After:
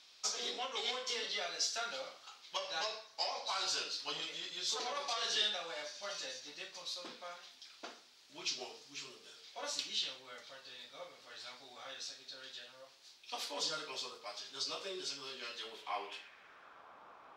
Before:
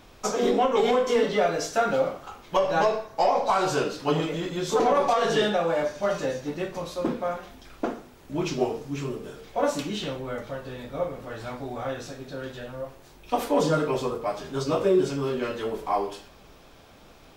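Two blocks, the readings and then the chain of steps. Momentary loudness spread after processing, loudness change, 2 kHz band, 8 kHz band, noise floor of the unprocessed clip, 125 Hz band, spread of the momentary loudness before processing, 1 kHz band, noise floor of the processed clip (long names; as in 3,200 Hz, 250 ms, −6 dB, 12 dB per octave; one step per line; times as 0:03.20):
17 LU, −13.0 dB, −10.5 dB, −3.0 dB, −52 dBFS, −33.5 dB, 14 LU, −17.5 dB, −61 dBFS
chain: band-pass filter sweep 4,500 Hz → 1,100 Hz, 0:15.57–0:16.87
level +3.5 dB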